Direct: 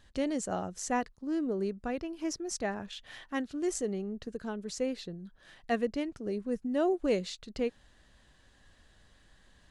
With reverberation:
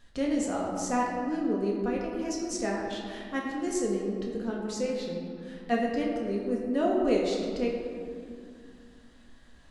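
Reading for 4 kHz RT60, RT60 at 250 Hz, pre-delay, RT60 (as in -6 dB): 1.2 s, 3.3 s, 4 ms, 2.5 s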